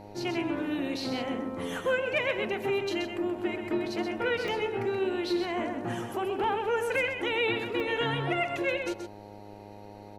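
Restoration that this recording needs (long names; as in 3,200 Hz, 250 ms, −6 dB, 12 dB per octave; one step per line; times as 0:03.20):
hum removal 102.7 Hz, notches 9
repair the gap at 0:04.48/0:06.44/0:07.80, 1.5 ms
downward expander −38 dBFS, range −21 dB
echo removal 128 ms −7 dB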